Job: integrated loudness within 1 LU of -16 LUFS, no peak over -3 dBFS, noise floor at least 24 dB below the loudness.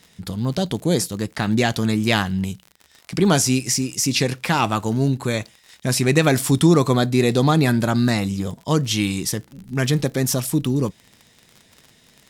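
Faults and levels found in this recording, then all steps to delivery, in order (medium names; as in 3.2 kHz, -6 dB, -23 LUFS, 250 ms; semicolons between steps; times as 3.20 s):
tick rate 47 per s; loudness -20.5 LUFS; peak level -3.5 dBFS; loudness target -16.0 LUFS
-> de-click; trim +4.5 dB; peak limiter -3 dBFS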